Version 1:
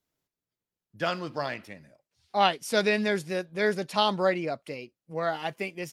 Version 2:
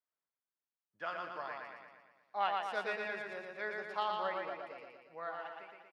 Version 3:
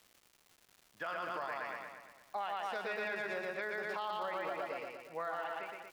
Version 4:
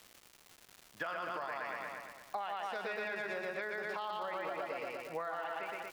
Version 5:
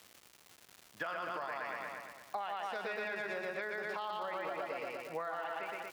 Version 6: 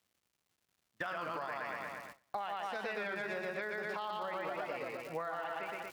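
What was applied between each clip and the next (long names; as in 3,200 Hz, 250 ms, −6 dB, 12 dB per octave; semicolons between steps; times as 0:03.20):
fade-out on the ending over 0.79 s; resonant band-pass 1,200 Hz, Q 1.3; repeating echo 117 ms, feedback 56%, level −3 dB; level −8 dB
downward compressor, threshold −38 dBFS, peak gain reduction 10 dB; brickwall limiter −37.5 dBFS, peak gain reduction 9 dB; surface crackle 380 per second −58 dBFS; level +8 dB
downward compressor, threshold −43 dBFS, peak gain reduction 8.5 dB; level +7 dB
high-pass filter 55 Hz
noise gate −49 dBFS, range −21 dB; bass and treble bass +6 dB, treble 0 dB; wow of a warped record 33 1/3 rpm, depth 100 cents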